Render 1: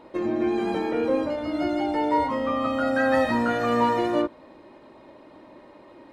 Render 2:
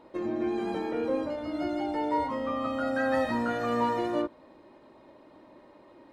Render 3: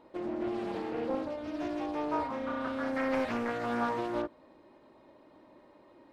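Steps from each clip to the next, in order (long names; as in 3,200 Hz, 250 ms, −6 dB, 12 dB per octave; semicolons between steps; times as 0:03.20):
parametric band 2,400 Hz −2 dB; level −5.5 dB
highs frequency-modulated by the lows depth 0.45 ms; level −4 dB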